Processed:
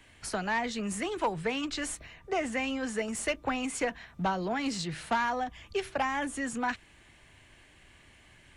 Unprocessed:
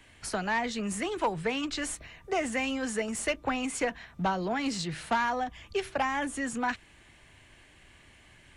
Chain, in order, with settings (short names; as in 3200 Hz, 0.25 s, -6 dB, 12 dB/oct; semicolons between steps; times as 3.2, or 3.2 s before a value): 2.14–2.97 high shelf 7500 Hz -7.5 dB; gain -1 dB